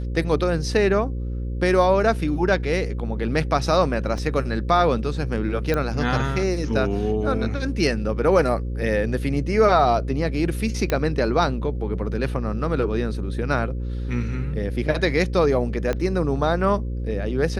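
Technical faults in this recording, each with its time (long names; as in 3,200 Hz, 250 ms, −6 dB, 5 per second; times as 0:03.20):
mains buzz 60 Hz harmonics 9 −27 dBFS
0:04.18: drop-out 2.3 ms
0:05.74: click −11 dBFS
0:10.90: click −9 dBFS
0:15.93: click −13 dBFS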